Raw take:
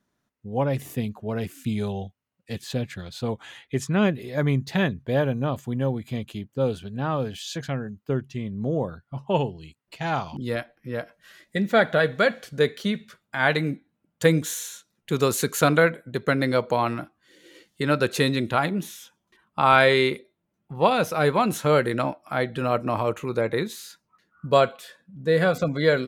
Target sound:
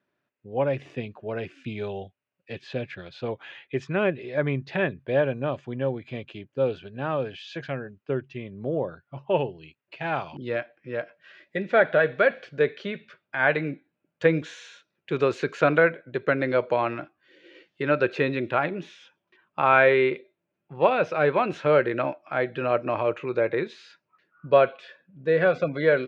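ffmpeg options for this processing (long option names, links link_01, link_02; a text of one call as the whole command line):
ffmpeg -i in.wav -filter_complex "[0:a]highpass=120,equalizer=frequency=210:width_type=q:width=4:gain=-7,equalizer=frequency=370:width_type=q:width=4:gain=5,equalizer=frequency=580:width_type=q:width=4:gain=6,equalizer=frequency=1600:width_type=q:width=4:gain=5,equalizer=frequency=2500:width_type=q:width=4:gain=8,equalizer=frequency=4100:width_type=q:width=4:gain=-3,lowpass=frequency=4500:width=0.5412,lowpass=frequency=4500:width=1.3066,acrossover=split=2500[link_01][link_02];[link_02]acompressor=threshold=-37dB:ratio=4:attack=1:release=60[link_03];[link_01][link_03]amix=inputs=2:normalize=0,volume=-3.5dB" out.wav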